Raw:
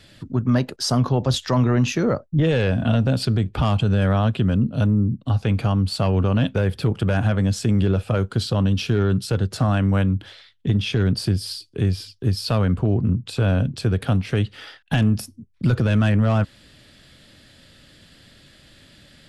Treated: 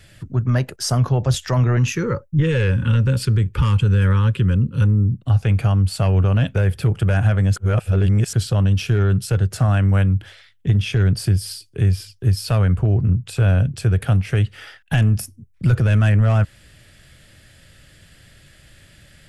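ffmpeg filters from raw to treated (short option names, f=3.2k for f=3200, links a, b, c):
-filter_complex "[0:a]asettb=1/sr,asplit=3[a][b][c];[a]atrim=end=1.774[d];[b]atrim=start=1.77:end=5.22,asetpts=PTS-STARTPTS,afade=t=in:d=0.004:c=qsin,afade=t=out:st=3.446:d=0.004:c=qsin,asuperstop=centerf=690:order=20:qfactor=2.5[e];[c]atrim=start=5.216[f];[d][e]acrossfade=d=0.004:c1=hsin:c2=qsin[g];[g][f]acrossfade=d=0.004:c1=qsin:c2=hsin,asplit=3[h][i][j];[h]atrim=end=7.562[k];[i]atrim=start=7.558:end=8.332,asetpts=PTS-STARTPTS,areverse[l];[j]atrim=start=8.328[m];[k][l]acrossfade=d=0.004:c1=hsin:c2=hsin[n];[n][m]acrossfade=d=0.004:c1=hsin:c2=hsin,equalizer=f=250:t=o:w=1:g=-12,equalizer=f=500:t=o:w=1:g=-4,equalizer=f=1k:t=o:w=1:g=-7,equalizer=f=4k:t=o:w=1:g=-11,volume=6.5dB"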